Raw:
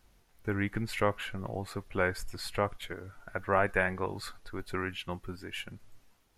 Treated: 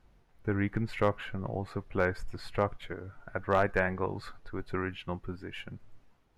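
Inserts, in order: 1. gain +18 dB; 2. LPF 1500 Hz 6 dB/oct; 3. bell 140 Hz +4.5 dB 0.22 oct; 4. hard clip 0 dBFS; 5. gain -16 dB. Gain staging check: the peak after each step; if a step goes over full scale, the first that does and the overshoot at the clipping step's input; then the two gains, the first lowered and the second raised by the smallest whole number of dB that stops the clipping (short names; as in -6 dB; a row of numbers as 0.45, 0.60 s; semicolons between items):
+5.5, +3.5, +3.5, 0.0, -16.0 dBFS; step 1, 3.5 dB; step 1 +14 dB, step 5 -12 dB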